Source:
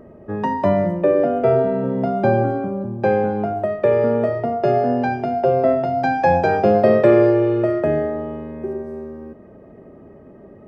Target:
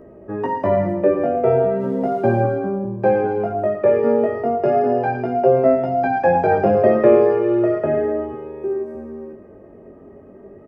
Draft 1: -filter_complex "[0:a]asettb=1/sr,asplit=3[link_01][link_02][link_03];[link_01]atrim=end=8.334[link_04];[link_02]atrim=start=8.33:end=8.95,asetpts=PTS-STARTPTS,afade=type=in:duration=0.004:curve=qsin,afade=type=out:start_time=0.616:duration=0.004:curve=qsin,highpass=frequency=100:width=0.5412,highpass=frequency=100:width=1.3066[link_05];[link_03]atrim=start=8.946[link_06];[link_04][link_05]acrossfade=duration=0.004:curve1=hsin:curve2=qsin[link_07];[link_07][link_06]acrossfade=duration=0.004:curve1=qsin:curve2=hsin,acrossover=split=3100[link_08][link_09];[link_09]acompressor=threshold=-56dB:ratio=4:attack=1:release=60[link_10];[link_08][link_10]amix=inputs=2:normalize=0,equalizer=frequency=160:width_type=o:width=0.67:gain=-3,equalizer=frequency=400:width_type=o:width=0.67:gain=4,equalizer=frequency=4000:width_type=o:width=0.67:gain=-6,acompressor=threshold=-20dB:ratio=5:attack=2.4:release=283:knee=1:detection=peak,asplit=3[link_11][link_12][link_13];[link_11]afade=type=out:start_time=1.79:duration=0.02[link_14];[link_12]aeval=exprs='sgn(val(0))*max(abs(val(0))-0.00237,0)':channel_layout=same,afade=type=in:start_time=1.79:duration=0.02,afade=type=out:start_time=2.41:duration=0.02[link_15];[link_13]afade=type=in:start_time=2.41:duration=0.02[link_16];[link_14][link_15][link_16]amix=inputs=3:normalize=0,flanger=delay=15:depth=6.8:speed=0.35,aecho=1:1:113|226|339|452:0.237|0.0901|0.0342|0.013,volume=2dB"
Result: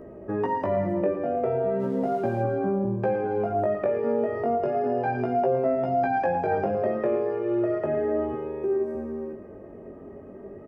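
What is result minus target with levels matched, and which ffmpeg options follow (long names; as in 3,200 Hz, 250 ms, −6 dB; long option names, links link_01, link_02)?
downward compressor: peak gain reduction +14 dB
-filter_complex "[0:a]asettb=1/sr,asplit=3[link_01][link_02][link_03];[link_01]atrim=end=8.334[link_04];[link_02]atrim=start=8.33:end=8.95,asetpts=PTS-STARTPTS,afade=type=in:duration=0.004:curve=qsin,afade=type=out:start_time=0.616:duration=0.004:curve=qsin,highpass=frequency=100:width=0.5412,highpass=frequency=100:width=1.3066[link_05];[link_03]atrim=start=8.946[link_06];[link_04][link_05]acrossfade=duration=0.004:curve1=hsin:curve2=qsin[link_07];[link_07][link_06]acrossfade=duration=0.004:curve1=qsin:curve2=hsin,acrossover=split=3100[link_08][link_09];[link_09]acompressor=threshold=-56dB:ratio=4:attack=1:release=60[link_10];[link_08][link_10]amix=inputs=2:normalize=0,equalizer=frequency=160:width_type=o:width=0.67:gain=-3,equalizer=frequency=400:width_type=o:width=0.67:gain=4,equalizer=frequency=4000:width_type=o:width=0.67:gain=-6,asplit=3[link_11][link_12][link_13];[link_11]afade=type=out:start_time=1.79:duration=0.02[link_14];[link_12]aeval=exprs='sgn(val(0))*max(abs(val(0))-0.00237,0)':channel_layout=same,afade=type=in:start_time=1.79:duration=0.02,afade=type=out:start_time=2.41:duration=0.02[link_15];[link_13]afade=type=in:start_time=2.41:duration=0.02[link_16];[link_14][link_15][link_16]amix=inputs=3:normalize=0,flanger=delay=15:depth=6.8:speed=0.35,aecho=1:1:113|226|339|452:0.237|0.0901|0.0342|0.013,volume=2dB"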